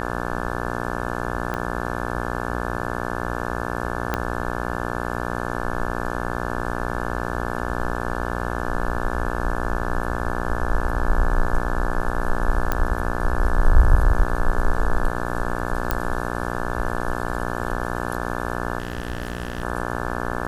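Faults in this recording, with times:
buzz 60 Hz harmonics 29 -27 dBFS
1.54 s: pop -14 dBFS
4.14 s: pop -8 dBFS
12.72 s: pop -8 dBFS
15.91 s: pop -6 dBFS
18.78–19.63 s: clipped -21 dBFS

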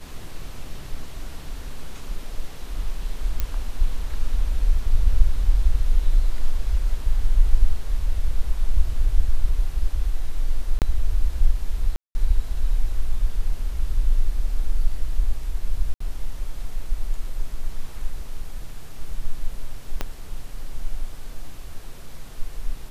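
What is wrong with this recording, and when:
3.40 s: pop -10 dBFS
10.79–10.82 s: dropout 28 ms
11.96–12.15 s: dropout 190 ms
15.94–16.00 s: dropout 64 ms
20.01 s: pop -10 dBFS

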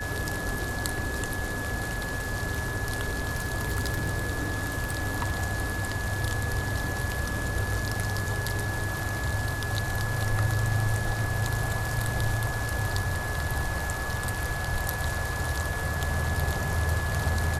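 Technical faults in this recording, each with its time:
whine 1.7 kHz -34 dBFS
3.19–5.37 s: clipped -22.5 dBFS

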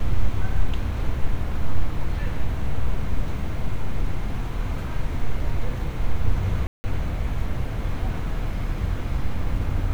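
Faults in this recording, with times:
6.67–6.84 s: dropout 170 ms

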